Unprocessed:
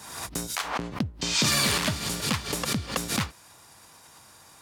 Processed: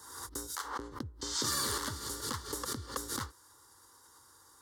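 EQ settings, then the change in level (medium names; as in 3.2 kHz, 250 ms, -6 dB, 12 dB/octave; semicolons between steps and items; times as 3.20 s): static phaser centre 670 Hz, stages 6; -6.0 dB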